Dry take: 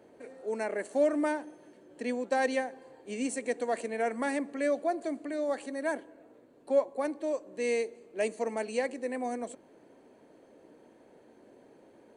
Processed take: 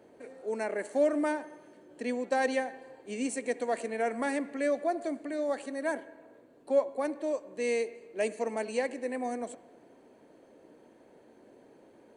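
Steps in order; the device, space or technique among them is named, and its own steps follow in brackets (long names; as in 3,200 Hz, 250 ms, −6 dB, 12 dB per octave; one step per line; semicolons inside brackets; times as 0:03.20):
filtered reverb send (on a send: high-pass filter 460 Hz + low-pass filter 3,400 Hz + convolution reverb RT60 1.3 s, pre-delay 60 ms, DRR 17 dB)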